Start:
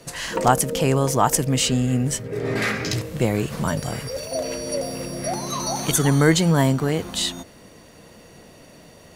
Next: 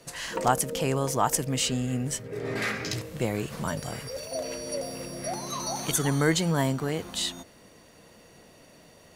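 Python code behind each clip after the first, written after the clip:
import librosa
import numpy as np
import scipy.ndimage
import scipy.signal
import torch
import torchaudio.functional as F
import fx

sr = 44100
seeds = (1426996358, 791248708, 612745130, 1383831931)

y = fx.low_shelf(x, sr, hz=350.0, db=-3.5)
y = y * librosa.db_to_amplitude(-5.5)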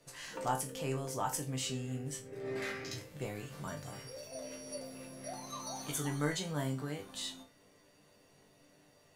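y = fx.resonator_bank(x, sr, root=43, chord='sus4', decay_s=0.26)
y = y * librosa.db_to_amplitude(1.0)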